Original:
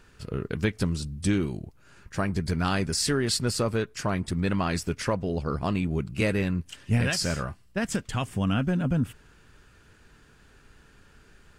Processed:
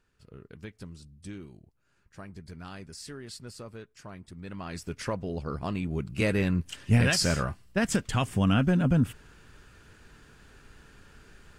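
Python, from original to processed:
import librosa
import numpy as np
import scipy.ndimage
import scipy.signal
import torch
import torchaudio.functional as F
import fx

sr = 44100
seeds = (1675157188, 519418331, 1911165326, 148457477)

y = fx.gain(x, sr, db=fx.line((4.36, -17.0), (5.02, -5.0), (5.76, -5.0), (6.65, 2.0)))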